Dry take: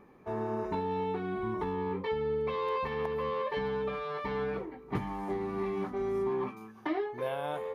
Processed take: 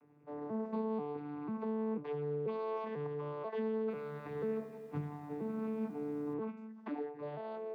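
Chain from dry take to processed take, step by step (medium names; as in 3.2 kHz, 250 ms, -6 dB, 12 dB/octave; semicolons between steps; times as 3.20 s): vocoder on a broken chord bare fifth, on D3, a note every 491 ms; band-stop 1.7 kHz, Q 26; 3.82–6.34 s: bit-crushed delay 88 ms, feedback 80%, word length 10-bit, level -12.5 dB; trim -4.5 dB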